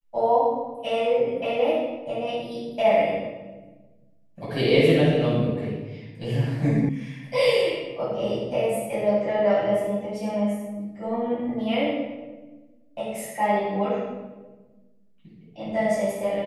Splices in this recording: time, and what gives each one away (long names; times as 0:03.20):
0:06.89: cut off before it has died away